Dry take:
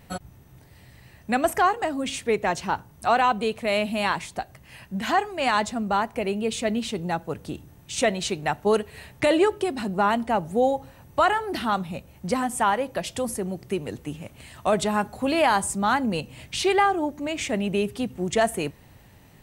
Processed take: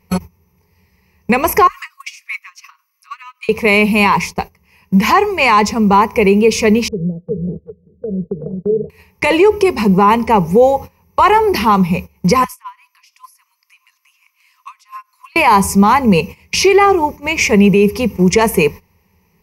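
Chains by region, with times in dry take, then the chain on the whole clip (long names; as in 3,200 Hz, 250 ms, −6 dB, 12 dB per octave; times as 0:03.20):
0:01.67–0:03.49: Butterworth high-pass 1,100 Hz 96 dB per octave + comb filter 6.3 ms, depth 49% + downward compressor 8 to 1, threshold −36 dBFS
0:06.88–0:08.90: downward compressor 3 to 1, threshold −33 dBFS + Chebyshev low-pass with heavy ripple 640 Hz, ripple 6 dB + single-tap delay 381 ms −4.5 dB
0:12.44–0:15.36: Chebyshev high-pass with heavy ripple 1,000 Hz, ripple 3 dB + downward compressor 5 to 1, threshold −40 dBFS
whole clip: EQ curve with evenly spaced ripples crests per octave 0.82, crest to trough 16 dB; noise gate −35 dBFS, range −20 dB; boost into a limiter +13 dB; level −1 dB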